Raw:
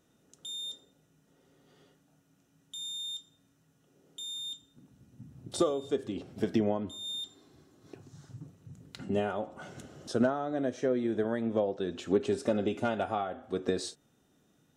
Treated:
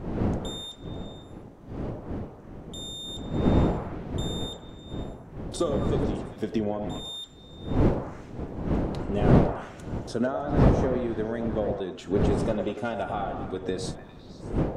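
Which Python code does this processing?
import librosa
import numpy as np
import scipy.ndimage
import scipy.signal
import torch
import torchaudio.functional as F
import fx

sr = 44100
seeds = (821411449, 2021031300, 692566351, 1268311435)

y = fx.dmg_wind(x, sr, seeds[0], corner_hz=290.0, level_db=-29.0)
y = fx.echo_stepped(y, sr, ms=101, hz=630.0, octaves=0.7, feedback_pct=70, wet_db=-3.5)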